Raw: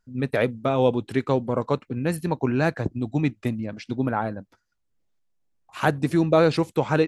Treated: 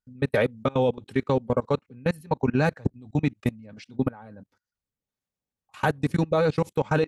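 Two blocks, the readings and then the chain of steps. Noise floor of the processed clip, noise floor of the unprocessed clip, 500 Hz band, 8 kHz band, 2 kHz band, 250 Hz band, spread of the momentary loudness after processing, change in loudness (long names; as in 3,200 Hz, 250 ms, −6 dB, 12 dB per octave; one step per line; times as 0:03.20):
below −85 dBFS, −73 dBFS, −2.0 dB, can't be measured, −1.5 dB, −3.0 dB, 8 LU, −2.0 dB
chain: notch comb filter 340 Hz
output level in coarse steps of 24 dB
level +3.5 dB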